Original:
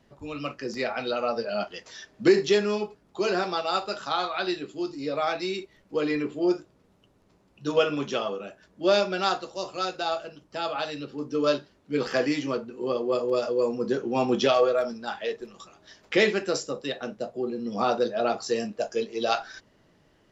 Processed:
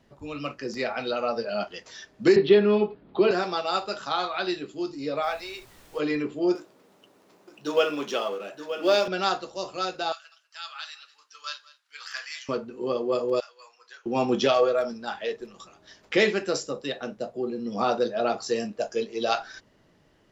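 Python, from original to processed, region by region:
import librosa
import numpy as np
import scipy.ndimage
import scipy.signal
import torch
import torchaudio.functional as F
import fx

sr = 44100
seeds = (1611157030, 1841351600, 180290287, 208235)

y = fx.chain(x, sr, fx.steep_lowpass(hz=4100.0, slope=48),
    fx.peak_eq(hz=280.0, db=7.0, octaves=2.3),
    fx.band_squash(depth_pct=40), at=(2.36, 3.31))
y = fx.highpass(y, sr, hz=520.0, slope=24, at=(5.22, 5.98), fade=0.02)
y = fx.high_shelf(y, sr, hz=4200.0, db=-8.5, at=(5.22, 5.98), fade=0.02)
y = fx.dmg_noise_colour(y, sr, seeds[0], colour='pink', level_db=-53.0, at=(5.22, 5.98), fade=0.02)
y = fx.chain(y, sr, fx.law_mismatch(coded='mu'),
    fx.highpass(hz=300.0, slope=12),
    fx.echo_single(ms=925, db=-10.5), at=(6.55, 9.08))
y = fx.chain(y, sr, fx.highpass(hz=1400.0, slope=24),
    fx.peak_eq(hz=2300.0, db=-4.5, octaves=1.2),
    fx.echo_single(ms=196, db=-19.5), at=(10.12, 12.49))
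y = fx.chain(y, sr, fx.bessel_highpass(hz=1900.0, order=4),
    fx.high_shelf(hz=2500.0, db=-8.5), at=(13.4, 14.06))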